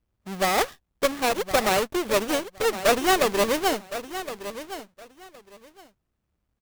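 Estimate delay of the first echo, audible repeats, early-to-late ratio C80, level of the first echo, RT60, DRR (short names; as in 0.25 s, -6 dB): 1.065 s, 2, none, -12.5 dB, none, none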